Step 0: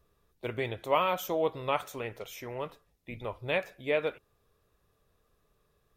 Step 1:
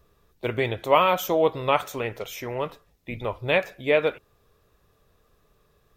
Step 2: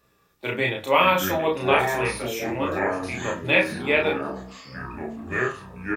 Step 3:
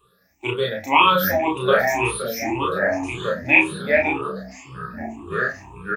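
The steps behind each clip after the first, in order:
bell 10000 Hz -4 dB 0.44 oct; gain +8 dB
reverb, pre-delay 3 ms, DRR 5 dB; echoes that change speed 0.382 s, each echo -6 st, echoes 3, each echo -6 dB; doubler 32 ms -2 dB
moving spectral ripple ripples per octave 0.66, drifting +1.9 Hz, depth 24 dB; gain -3.5 dB

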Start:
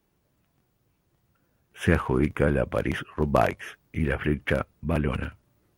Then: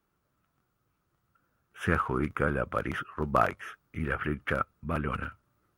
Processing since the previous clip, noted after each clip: bell 1300 Hz +13.5 dB 0.49 oct; gain -7 dB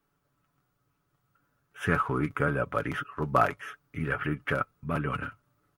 comb 7 ms, depth 54%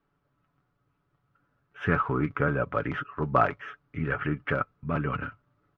air absorption 230 m; gain +2 dB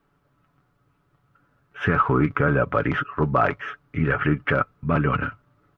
limiter -16 dBFS, peak gain reduction 7.5 dB; gain +8 dB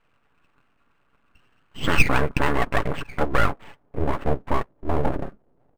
low-pass sweep 1500 Hz -> 420 Hz, 1.61–5.09; full-wave rectifier; decimation joined by straight lines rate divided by 4×

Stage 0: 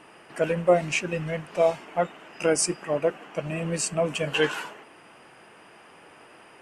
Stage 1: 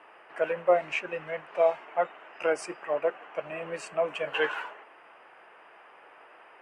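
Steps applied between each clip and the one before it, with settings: three-band isolator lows -21 dB, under 440 Hz, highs -20 dB, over 2700 Hz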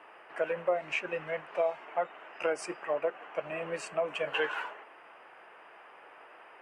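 compressor 3:1, threshold -27 dBFS, peak gain reduction 8.5 dB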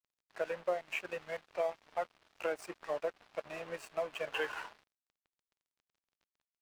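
crossover distortion -44.5 dBFS; gain -4 dB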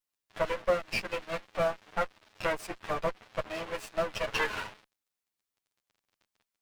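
minimum comb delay 9.4 ms; gain +7.5 dB

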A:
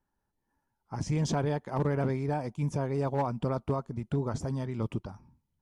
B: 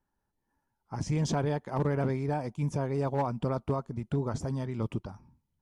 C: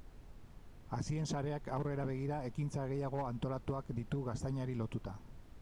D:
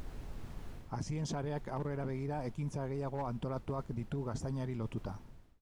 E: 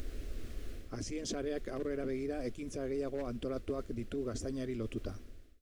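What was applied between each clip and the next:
nothing audible
compressor, threshold -35 dBFS, peak gain reduction 10.5 dB; added noise brown -52 dBFS
ending faded out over 1.06 s; reverse; compressor 6:1, threshold -45 dBFS, peak gain reduction 12.5 dB; reverse; gain +10 dB
fixed phaser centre 370 Hz, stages 4; gain +5 dB

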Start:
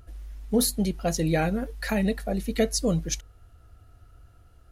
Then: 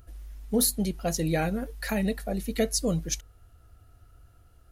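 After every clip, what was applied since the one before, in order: high shelf 9300 Hz +8 dB; gain -2.5 dB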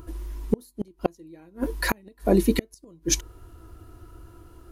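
small resonant body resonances 340/980 Hz, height 17 dB, ringing for 45 ms; flipped gate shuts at -15 dBFS, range -36 dB; gain +7.5 dB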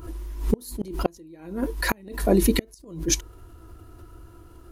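backwards sustainer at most 100 dB/s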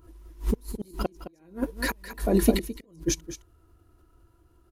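limiter -15 dBFS, peak gain reduction 8 dB; on a send: echo 0.214 s -5 dB; on the sum: upward expander 2.5:1, over -33 dBFS; gain +5.5 dB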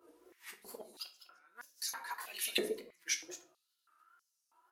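wow and flutter 110 cents; shoebox room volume 51 m³, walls mixed, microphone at 0.35 m; stepped high-pass 3.1 Hz 470–5700 Hz; gain -7 dB

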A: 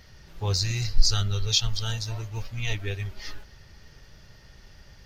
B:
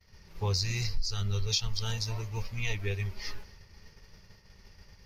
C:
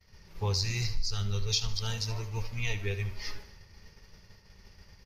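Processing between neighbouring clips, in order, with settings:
expander -44 dBFS; ripple EQ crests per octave 0.85, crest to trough 6 dB; compressor 5:1, threshold -24 dBFS, peak gain reduction 14.5 dB; gain -1.5 dB
feedback echo 75 ms, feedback 41%, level -14 dB; downsampling 32000 Hz

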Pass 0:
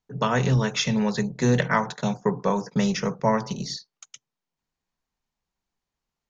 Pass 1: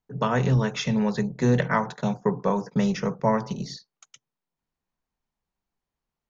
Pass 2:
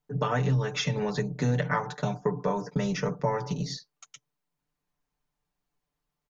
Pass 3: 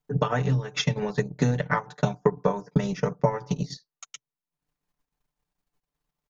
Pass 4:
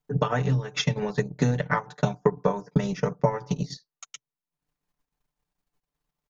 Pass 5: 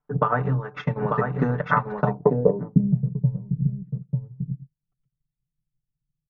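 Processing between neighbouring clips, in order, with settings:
high shelf 2500 Hz -8 dB
comb 6.8 ms, depth 81%; compressor 2.5:1, threshold -26 dBFS, peak gain reduction 9 dB
transient shaper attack +7 dB, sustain -11 dB
nothing audible
echo 0.893 s -4 dB; low-pass sweep 1300 Hz -> 130 Hz, 2.01–3.01

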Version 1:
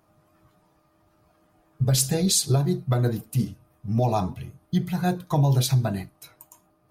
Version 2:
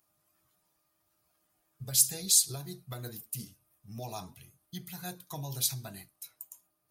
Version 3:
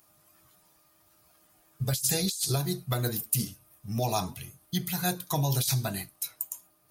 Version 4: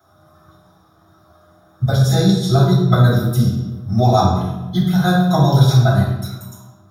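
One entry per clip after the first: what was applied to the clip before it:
pre-emphasis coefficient 0.9
negative-ratio compressor -35 dBFS, ratio -1; gain +8 dB
reverb RT60 1.1 s, pre-delay 3 ms, DRR -11.5 dB; gain -9 dB

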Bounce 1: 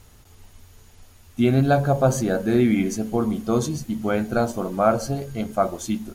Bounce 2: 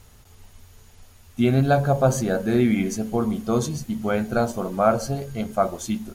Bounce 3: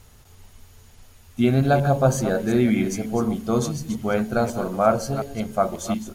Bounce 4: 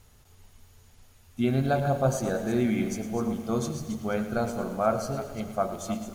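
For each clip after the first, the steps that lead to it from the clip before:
bell 310 Hz -7.5 dB 0.22 oct
reverse delay 0.18 s, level -10.5 dB
digital reverb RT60 4.1 s, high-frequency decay 0.95×, pre-delay 30 ms, DRR 14.5 dB; lo-fi delay 0.111 s, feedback 55%, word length 7-bit, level -12.5 dB; gain -6.5 dB

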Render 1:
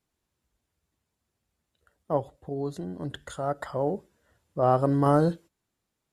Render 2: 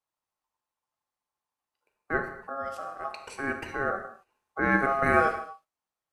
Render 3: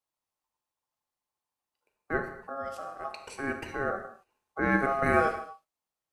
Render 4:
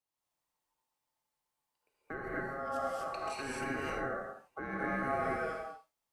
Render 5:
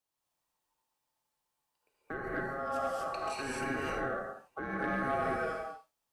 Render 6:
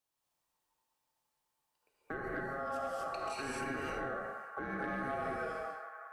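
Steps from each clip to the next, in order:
non-linear reverb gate 0.28 s falling, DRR 5 dB; ring modulator 960 Hz; gate -54 dBFS, range -8 dB
bell 1400 Hz -3.5 dB 1.5 oct
compressor 2.5:1, threshold -33 dBFS, peak gain reduction 10.5 dB; limiter -25 dBFS, peak gain reduction 5.5 dB; non-linear reverb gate 0.28 s rising, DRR -6 dB; gain -4.5 dB
notch 2100 Hz, Q 18; soft clip -25 dBFS, distortion -24 dB; gain +2.5 dB
on a send: narrowing echo 0.184 s, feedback 85%, band-pass 1200 Hz, level -13 dB; on the sum: compressor 3:1, threshold -36 dBFS, peak gain reduction 6 dB

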